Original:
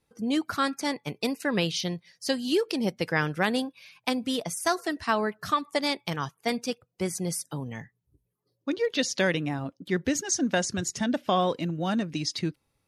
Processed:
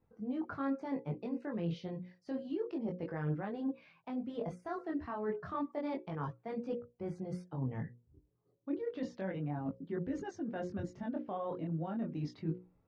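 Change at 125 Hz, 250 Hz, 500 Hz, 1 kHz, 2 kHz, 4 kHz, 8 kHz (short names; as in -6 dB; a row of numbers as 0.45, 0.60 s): -5.5 dB, -8.5 dB, -10.5 dB, -13.5 dB, -20.0 dB, -28.0 dB, under -30 dB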